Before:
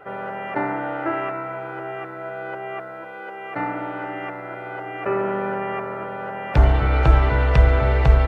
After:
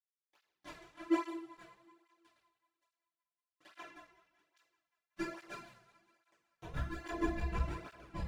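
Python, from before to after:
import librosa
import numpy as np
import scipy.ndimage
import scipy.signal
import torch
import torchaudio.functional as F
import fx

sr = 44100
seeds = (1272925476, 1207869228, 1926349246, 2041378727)

p1 = fx.halfwave_hold(x, sr)
p2 = fx.lowpass(p1, sr, hz=1600.0, slope=6)
p3 = fx.low_shelf(p2, sr, hz=160.0, db=10.5)
p4 = fx.rider(p3, sr, range_db=4, speed_s=0.5)
p5 = fx.chorus_voices(p4, sr, voices=4, hz=0.58, base_ms=28, depth_ms=4.3, mix_pct=60)
p6 = fx.comb_fb(p5, sr, f0_hz=340.0, decay_s=0.31, harmonics='all', damping=0.0, mix_pct=100)
p7 = np.sign(p6) * np.maximum(np.abs(p6) - 10.0 ** (-32.0 / 20.0), 0.0)
p8 = fx.granulator(p7, sr, seeds[0], grain_ms=100.0, per_s=6.4, spray_ms=100.0, spread_st=0)
p9 = p8 + fx.echo_thinned(p8, sr, ms=188, feedback_pct=65, hz=280.0, wet_db=-19.5, dry=0)
p10 = fx.rev_double_slope(p9, sr, seeds[1], early_s=0.46, late_s=1.5, knee_db=-16, drr_db=-8.0)
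y = fx.flanger_cancel(p10, sr, hz=1.2, depth_ms=3.8)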